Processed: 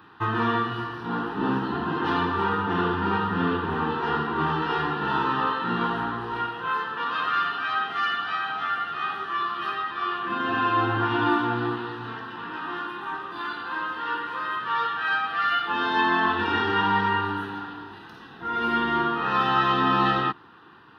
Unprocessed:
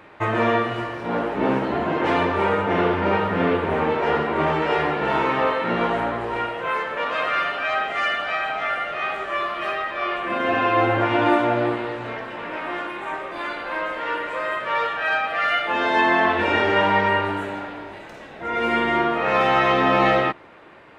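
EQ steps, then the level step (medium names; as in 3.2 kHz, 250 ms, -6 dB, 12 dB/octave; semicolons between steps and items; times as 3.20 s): high-pass 86 Hz; static phaser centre 2.2 kHz, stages 6; 0.0 dB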